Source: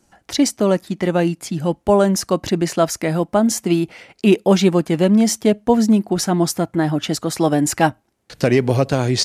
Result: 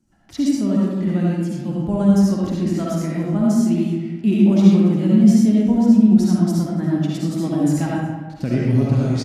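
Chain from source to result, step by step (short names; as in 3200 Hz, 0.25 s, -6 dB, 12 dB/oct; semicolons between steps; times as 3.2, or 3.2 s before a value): resonant low shelf 340 Hz +10.5 dB, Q 1.5; on a send: echo 0.285 s -21 dB; on the sum: digital reverb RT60 1.3 s, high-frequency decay 0.55×, pre-delay 30 ms, DRR -5.5 dB; gain -15.5 dB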